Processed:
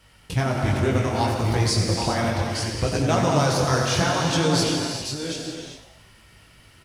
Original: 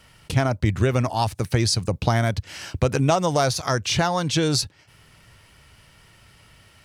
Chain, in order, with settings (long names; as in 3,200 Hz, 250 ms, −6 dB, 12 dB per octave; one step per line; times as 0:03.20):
delay that plays each chunk backwards 537 ms, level −6 dB
multi-voice chorus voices 2, 0.66 Hz, delay 20 ms, depth 2.9 ms
echo with shifted repeats 91 ms, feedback 53%, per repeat +110 Hz, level −12 dB
reverb whose tail is shaped and stops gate 430 ms flat, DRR 1.5 dB